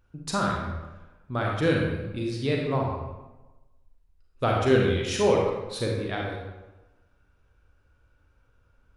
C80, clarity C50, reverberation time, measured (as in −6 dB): 3.5 dB, 0.5 dB, 1.1 s